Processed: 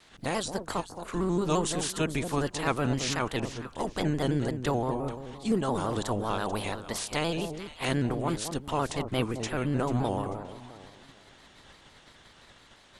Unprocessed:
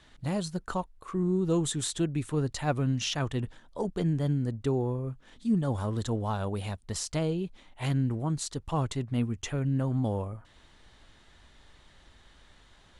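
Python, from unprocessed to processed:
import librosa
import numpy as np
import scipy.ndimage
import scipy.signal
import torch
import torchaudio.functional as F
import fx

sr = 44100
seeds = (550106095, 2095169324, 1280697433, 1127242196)

y = fx.spec_clip(x, sr, under_db=18)
y = fx.echo_alternate(y, sr, ms=220, hz=940.0, feedback_pct=51, wet_db=-7.5)
y = fx.vibrato_shape(y, sr, shape='square', rate_hz=5.8, depth_cents=100.0)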